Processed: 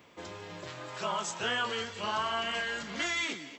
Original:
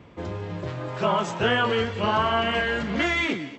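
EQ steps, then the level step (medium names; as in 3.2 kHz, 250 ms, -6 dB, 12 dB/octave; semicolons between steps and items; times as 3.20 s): RIAA curve recording; dynamic bell 490 Hz, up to -5 dB, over -38 dBFS, Q 0.73; dynamic bell 2.4 kHz, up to -5 dB, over -37 dBFS, Q 0.93; -5.5 dB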